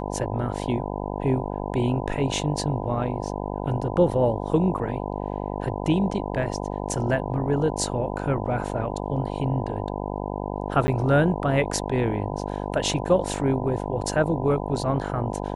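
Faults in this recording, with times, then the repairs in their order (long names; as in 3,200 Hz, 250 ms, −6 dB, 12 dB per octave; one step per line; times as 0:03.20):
mains buzz 50 Hz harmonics 20 −30 dBFS
0:10.87–0:10.88: drop-out 10 ms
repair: hum removal 50 Hz, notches 20
repair the gap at 0:10.87, 10 ms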